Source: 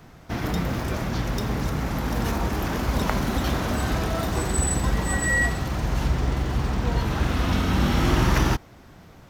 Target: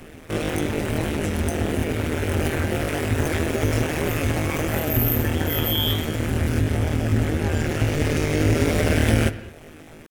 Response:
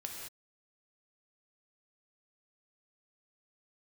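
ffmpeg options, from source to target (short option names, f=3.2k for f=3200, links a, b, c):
-filter_complex "[0:a]equalizer=f=100:t=o:w=0.67:g=-6,equalizer=f=630:t=o:w=0.67:g=-10,equalizer=f=2.5k:t=o:w=0.67:g=-6,equalizer=f=10k:t=o:w=0.67:g=5,asplit=2[a][b];[b]acompressor=threshold=-32dB:ratio=6,volume=2.5dB[c];[a][c]amix=inputs=2:normalize=0,flanger=delay=8.4:depth=7.8:regen=72:speed=1.6:shape=triangular,asetrate=80880,aresample=44100,atempo=0.545254,tremolo=f=170:d=0.889,asetrate=40572,aresample=44100,asplit=2[d][e];[1:a]atrim=start_sample=2205,lowpass=3.6k[f];[e][f]afir=irnorm=-1:irlink=0,volume=-8dB[g];[d][g]amix=inputs=2:normalize=0,volume=6.5dB"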